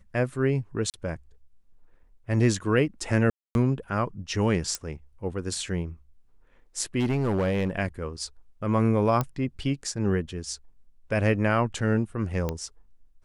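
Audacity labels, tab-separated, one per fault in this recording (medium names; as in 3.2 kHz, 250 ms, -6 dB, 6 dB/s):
0.900000	0.940000	dropout 38 ms
3.300000	3.550000	dropout 251 ms
4.750000	4.750000	pop -14 dBFS
6.990000	7.700000	clipped -20.5 dBFS
9.210000	9.210000	pop -13 dBFS
12.490000	12.490000	pop -15 dBFS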